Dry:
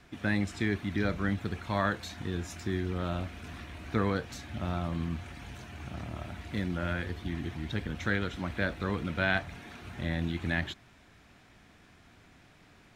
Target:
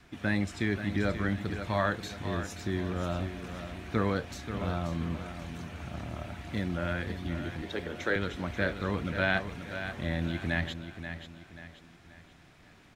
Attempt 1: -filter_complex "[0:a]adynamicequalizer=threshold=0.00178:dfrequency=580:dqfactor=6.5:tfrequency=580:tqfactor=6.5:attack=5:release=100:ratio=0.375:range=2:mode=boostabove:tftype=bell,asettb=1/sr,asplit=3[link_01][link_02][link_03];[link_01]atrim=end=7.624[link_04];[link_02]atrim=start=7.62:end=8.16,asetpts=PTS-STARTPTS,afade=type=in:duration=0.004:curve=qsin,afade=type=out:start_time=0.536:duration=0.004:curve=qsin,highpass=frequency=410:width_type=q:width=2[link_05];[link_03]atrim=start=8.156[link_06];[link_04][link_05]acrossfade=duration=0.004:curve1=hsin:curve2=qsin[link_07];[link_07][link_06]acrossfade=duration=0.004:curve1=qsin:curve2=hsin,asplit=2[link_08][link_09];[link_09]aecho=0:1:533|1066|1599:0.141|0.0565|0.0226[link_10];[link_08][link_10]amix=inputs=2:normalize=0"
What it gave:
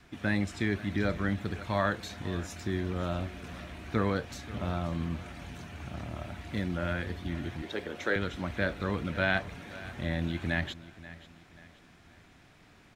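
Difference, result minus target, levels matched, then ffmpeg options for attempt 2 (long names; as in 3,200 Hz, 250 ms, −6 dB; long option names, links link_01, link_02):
echo-to-direct −7.5 dB
-filter_complex "[0:a]adynamicequalizer=threshold=0.00178:dfrequency=580:dqfactor=6.5:tfrequency=580:tqfactor=6.5:attack=5:release=100:ratio=0.375:range=2:mode=boostabove:tftype=bell,asettb=1/sr,asplit=3[link_01][link_02][link_03];[link_01]atrim=end=7.624[link_04];[link_02]atrim=start=7.62:end=8.16,asetpts=PTS-STARTPTS,afade=type=in:duration=0.004:curve=qsin,afade=type=out:start_time=0.536:duration=0.004:curve=qsin,highpass=frequency=410:width_type=q:width=2[link_05];[link_03]atrim=start=8.156[link_06];[link_04][link_05]acrossfade=duration=0.004:curve1=hsin:curve2=qsin[link_07];[link_07][link_06]acrossfade=duration=0.004:curve1=qsin:curve2=hsin,asplit=2[link_08][link_09];[link_09]aecho=0:1:533|1066|1599|2132:0.335|0.134|0.0536|0.0214[link_10];[link_08][link_10]amix=inputs=2:normalize=0"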